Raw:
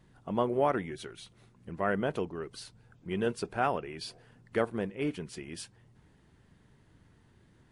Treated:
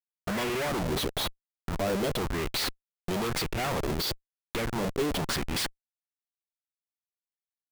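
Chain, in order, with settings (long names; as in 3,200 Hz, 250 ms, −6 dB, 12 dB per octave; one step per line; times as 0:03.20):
high shelf with overshoot 2,700 Hz +9.5 dB, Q 3
comparator with hysteresis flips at −39 dBFS
auto-filter bell 1 Hz 400–2,600 Hz +7 dB
level +4.5 dB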